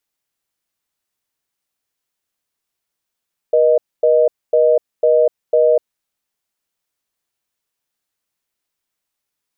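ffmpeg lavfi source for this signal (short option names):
-f lavfi -i "aevalsrc='0.251*(sin(2*PI*480*t)+sin(2*PI*620*t))*clip(min(mod(t,0.5),0.25-mod(t,0.5))/0.005,0,1)':d=2.45:s=44100"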